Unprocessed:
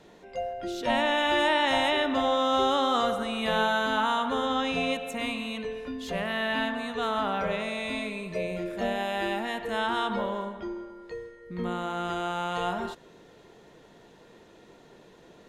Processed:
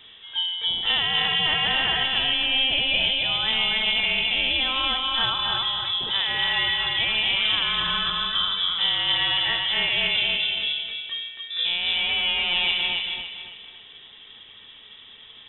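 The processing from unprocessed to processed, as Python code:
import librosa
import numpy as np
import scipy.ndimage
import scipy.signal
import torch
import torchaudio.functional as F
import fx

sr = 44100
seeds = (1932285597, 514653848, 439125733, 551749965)

p1 = fx.rider(x, sr, range_db=3, speed_s=0.5)
p2 = p1 + fx.echo_feedback(p1, sr, ms=279, feedback_pct=37, wet_db=-3, dry=0)
p3 = fx.freq_invert(p2, sr, carrier_hz=3700)
y = p3 * librosa.db_to_amplitude(3.0)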